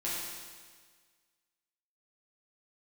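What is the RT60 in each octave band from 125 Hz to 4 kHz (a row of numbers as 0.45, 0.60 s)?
1.6, 1.6, 1.6, 1.6, 1.6, 1.6 s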